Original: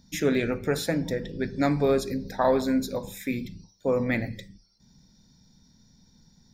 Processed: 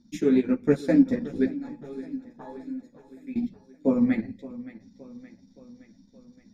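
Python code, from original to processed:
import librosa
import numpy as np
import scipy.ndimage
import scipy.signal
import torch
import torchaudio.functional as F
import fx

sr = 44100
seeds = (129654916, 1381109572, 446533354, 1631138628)

y = scipy.signal.sosfilt(scipy.signal.butter(2, 9700.0, 'lowpass', fs=sr, output='sos'), x)
y = fx.peak_eq(y, sr, hz=260.0, db=15.0, octaves=0.86)
y = fx.transient(y, sr, attack_db=2, sustain_db=-11)
y = fx.rider(y, sr, range_db=4, speed_s=0.5)
y = fx.comb_fb(y, sr, f0_hz=840.0, decay_s=0.27, harmonics='all', damping=0.0, mix_pct=90, at=(1.53, 3.36))
y = fx.echo_feedback(y, sr, ms=570, feedback_pct=57, wet_db=-17)
y = fx.ensemble(y, sr)
y = y * librosa.db_to_amplitude(-3.5)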